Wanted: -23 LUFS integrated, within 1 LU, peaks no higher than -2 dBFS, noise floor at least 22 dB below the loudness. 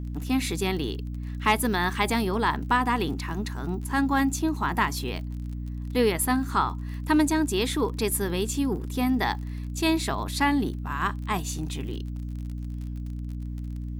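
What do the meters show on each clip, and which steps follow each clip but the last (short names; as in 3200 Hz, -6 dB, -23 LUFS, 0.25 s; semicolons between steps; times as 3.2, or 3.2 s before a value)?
ticks 32/s; hum 60 Hz; harmonics up to 300 Hz; hum level -30 dBFS; loudness -27.0 LUFS; peak -9.5 dBFS; loudness target -23.0 LUFS
-> de-click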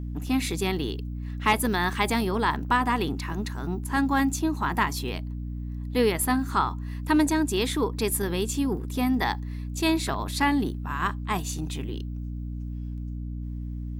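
ticks 0.43/s; hum 60 Hz; harmonics up to 240 Hz; hum level -31 dBFS
-> de-hum 60 Hz, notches 4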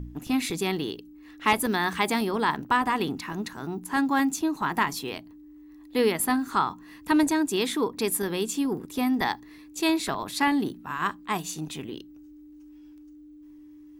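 hum none; loudness -27.0 LUFS; peak -10.0 dBFS; loudness target -23.0 LUFS
-> gain +4 dB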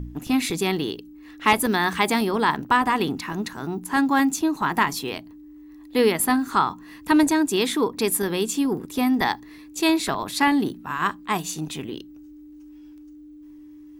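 loudness -23.0 LUFS; peak -6.0 dBFS; noise floor -45 dBFS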